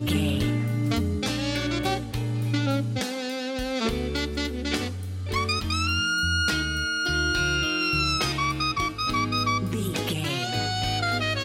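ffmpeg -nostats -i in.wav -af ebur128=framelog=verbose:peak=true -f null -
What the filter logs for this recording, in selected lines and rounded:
Integrated loudness:
  I:         -25.6 LUFS
  Threshold: -35.6 LUFS
Loudness range:
  LRA:         3.9 LU
  Threshold: -45.5 LUFS
  LRA low:   -27.7 LUFS
  LRA high:  -23.7 LUFS
True peak:
  Peak:      -12.7 dBFS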